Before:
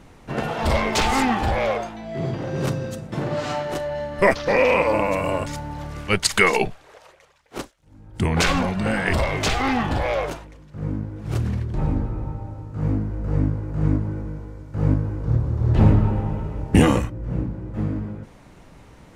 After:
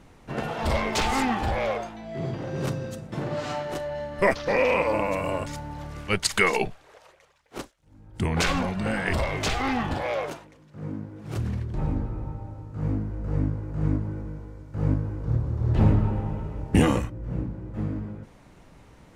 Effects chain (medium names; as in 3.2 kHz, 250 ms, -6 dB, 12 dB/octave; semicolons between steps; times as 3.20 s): 9.94–11.37 s: high-pass 130 Hz 12 dB/octave; trim -4.5 dB